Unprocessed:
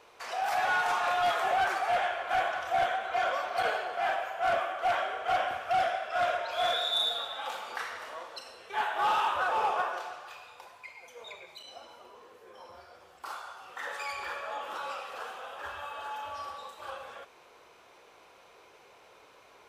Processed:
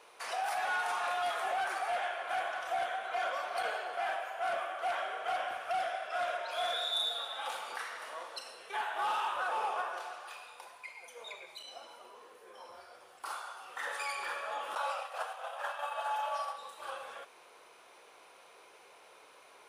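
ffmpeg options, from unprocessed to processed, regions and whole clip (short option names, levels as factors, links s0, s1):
-filter_complex "[0:a]asettb=1/sr,asplit=3[s0][s1][s2];[s0]atrim=end=14.754[s3];[s1]atrim=start=14.75:end=16.56,asetpts=PTS-STARTPTS,afade=t=in:d=0.004:c=qsin,afade=t=out:st=1.806:d=0.004:c=qsin,lowshelf=f=440:t=q:w=3:g=-12,agate=range=0.0224:threshold=0.02:ratio=3:release=100:detection=peak,acontrast=81[s4];[s2]atrim=start=16.556[s5];[s3][s4]acrossfade=d=0.004:c1=hsin:c2=qsin[s6];[s6][s5]acrossfade=d=0.004:c1=qsin:c2=hsin,highpass=f=390:p=1,alimiter=level_in=1.26:limit=0.0631:level=0:latency=1:release=499,volume=0.794,equalizer=f=9600:w=6.1:g=13"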